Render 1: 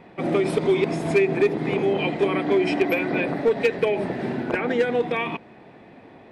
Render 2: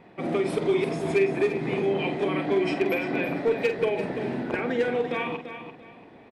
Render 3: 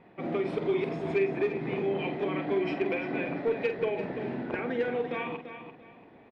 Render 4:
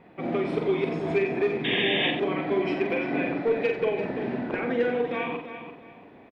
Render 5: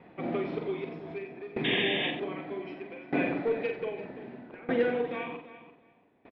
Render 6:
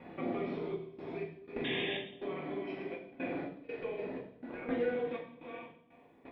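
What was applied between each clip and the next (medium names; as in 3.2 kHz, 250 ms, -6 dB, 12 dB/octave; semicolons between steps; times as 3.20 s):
doubling 46 ms -9 dB; on a send: feedback delay 340 ms, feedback 27%, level -10 dB; on the sum: trim -4.5 dB
low-pass 3.4 kHz 12 dB/octave; trim -4.5 dB
painted sound noise, 1.64–2.11 s, 1.6–3.7 kHz -31 dBFS; on a send: multi-tap echo 42/91 ms -7.5/-9.5 dB; on the sum: trim +3 dB
low-pass 4.8 kHz 24 dB/octave; sawtooth tremolo in dB decaying 0.64 Hz, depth 19 dB
compression 2.5:1, threshold -42 dBFS, peak gain reduction 13.5 dB; trance gate "xxx.x.xx." 61 bpm -24 dB; reverberation RT60 0.70 s, pre-delay 4 ms, DRR -1 dB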